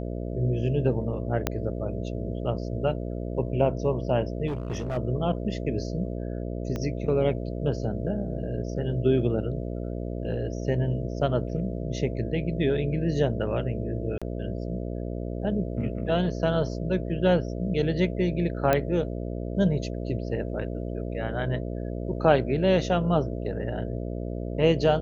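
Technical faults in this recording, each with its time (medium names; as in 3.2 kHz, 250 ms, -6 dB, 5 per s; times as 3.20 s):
buzz 60 Hz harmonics 11 -32 dBFS
1.47 s: pop -9 dBFS
4.47–4.98 s: clipped -26 dBFS
6.76 s: pop -19 dBFS
14.18–14.22 s: dropout 36 ms
18.73 s: pop -9 dBFS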